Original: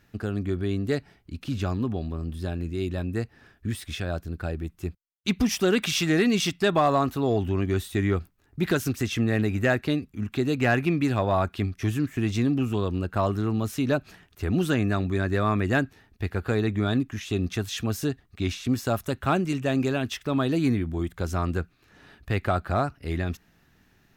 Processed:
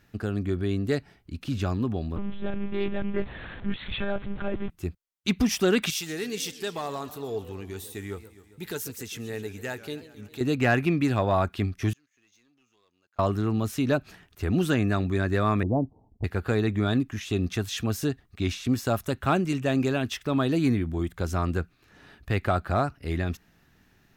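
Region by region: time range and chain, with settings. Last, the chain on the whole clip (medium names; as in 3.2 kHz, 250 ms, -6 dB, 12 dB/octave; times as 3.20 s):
2.16–4.70 s: jump at every zero crossing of -34.5 dBFS + monotone LPC vocoder at 8 kHz 200 Hz + loudspeaker Doppler distortion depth 0.19 ms
5.90–10.41 s: pre-emphasis filter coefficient 0.8 + small resonant body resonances 440/870 Hz, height 12 dB, ringing for 85 ms + modulated delay 135 ms, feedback 66%, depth 189 cents, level -16 dB
11.93–13.19 s: band-pass filter 6.5 kHz, Q 19 + distance through air 320 m + waveshaping leveller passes 3
15.63–16.24 s: steep low-pass 980 Hz 72 dB/octave + band-stop 380 Hz, Q 7.2
whole clip: none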